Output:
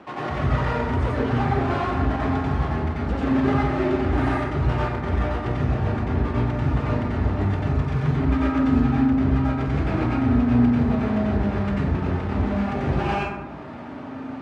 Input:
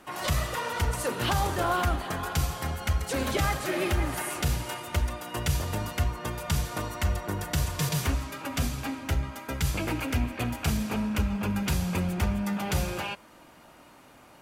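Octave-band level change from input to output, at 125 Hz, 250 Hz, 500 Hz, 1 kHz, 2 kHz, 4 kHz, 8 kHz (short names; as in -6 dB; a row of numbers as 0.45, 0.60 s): +7.5 dB, +11.0 dB, +7.0 dB, +5.0 dB, +2.0 dB, -6.0 dB, under -15 dB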